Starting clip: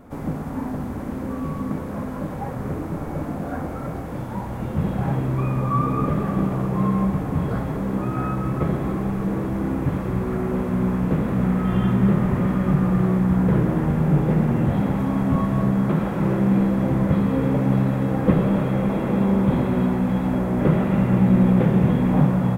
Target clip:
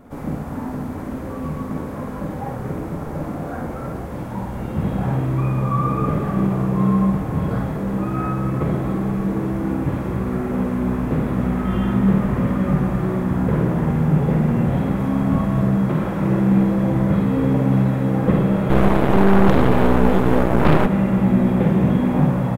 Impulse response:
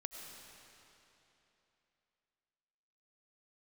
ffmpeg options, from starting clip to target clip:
-filter_complex "[0:a]aecho=1:1:52|68:0.596|0.168,asplit=3[link_01][link_02][link_03];[link_01]afade=type=out:start_time=18.69:duration=0.02[link_04];[link_02]aeval=exprs='0.447*(cos(1*acos(clip(val(0)/0.447,-1,1)))-cos(1*PI/2))+0.178*(cos(6*acos(clip(val(0)/0.447,-1,1)))-cos(6*PI/2))':channel_layout=same,afade=type=in:start_time=18.69:duration=0.02,afade=type=out:start_time=20.85:duration=0.02[link_05];[link_03]afade=type=in:start_time=20.85:duration=0.02[link_06];[link_04][link_05][link_06]amix=inputs=3:normalize=0"

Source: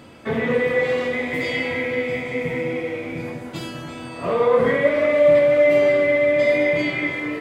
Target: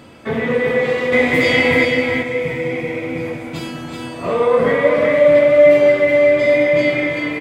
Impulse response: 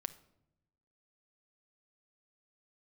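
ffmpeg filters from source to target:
-filter_complex "[0:a]asettb=1/sr,asplit=3[link_01][link_02][link_03];[link_01]atrim=end=1.124[link_04];[link_02]atrim=start=1.12:end=1.85,asetpts=PTS-STARTPTS,afade=type=in:duration=0.004:curve=qsin,afade=type=out:start_time=0.726:duration=0.004:curve=qsin,acontrast=88[link_05];[link_03]atrim=start=1.846[link_06];[link_04][link_05]acrossfade=duration=0.004:curve1=hsin:curve2=qsin[link_07];[link_07][link_06]acrossfade=duration=0.004:curve1=qsin:curve2=hsin,aecho=1:1:378:0.562,volume=2.5dB"

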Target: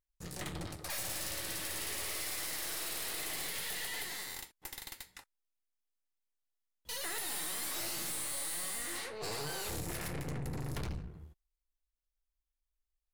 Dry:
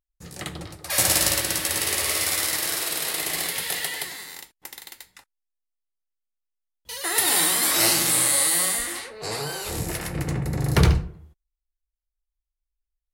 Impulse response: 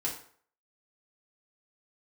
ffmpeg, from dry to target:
-af "acompressor=threshold=-29dB:ratio=6,aeval=exprs='(tanh(63.1*val(0)+0.65)-tanh(0.65))/63.1':channel_layout=same"

